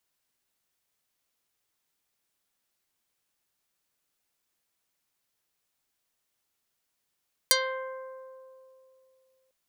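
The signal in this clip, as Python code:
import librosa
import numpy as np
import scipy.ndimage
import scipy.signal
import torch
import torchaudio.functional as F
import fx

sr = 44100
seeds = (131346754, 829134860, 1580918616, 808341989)

y = fx.pluck(sr, length_s=2.0, note=72, decay_s=2.86, pick=0.4, brightness='dark')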